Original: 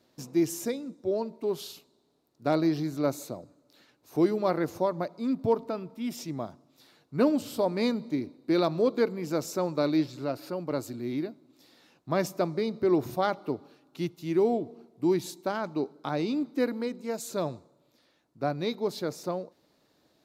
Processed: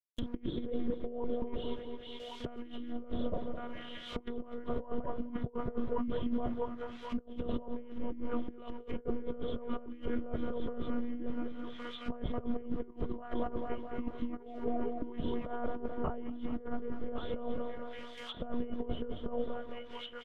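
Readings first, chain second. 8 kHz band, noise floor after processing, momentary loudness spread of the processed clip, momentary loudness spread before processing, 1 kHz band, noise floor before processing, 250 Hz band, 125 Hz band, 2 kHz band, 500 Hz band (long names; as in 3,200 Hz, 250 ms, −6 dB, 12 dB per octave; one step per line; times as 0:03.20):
below −25 dB, −49 dBFS, 7 LU, 10 LU, −8.5 dB, −69 dBFS, −8.0 dB, −8.0 dB, −9.5 dB, −10.5 dB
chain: hearing-aid frequency compression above 2,700 Hz 4 to 1
in parallel at −1 dB: output level in coarse steps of 21 dB
on the sum: one-pitch LPC vocoder at 8 kHz 240 Hz
bit-depth reduction 8 bits, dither none
delay with a high-pass on its return 1,112 ms, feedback 37%, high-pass 1,400 Hz, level −4 dB
noise gate with hold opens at −41 dBFS
on a send: repeating echo 216 ms, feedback 54%, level −11 dB
on the sum: compressor whose output falls as the input rises −31 dBFS, ratio −0.5
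notch filter 810 Hz, Q 5.2
treble cut that deepens with the level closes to 960 Hz, closed at −31 dBFS
level −2 dB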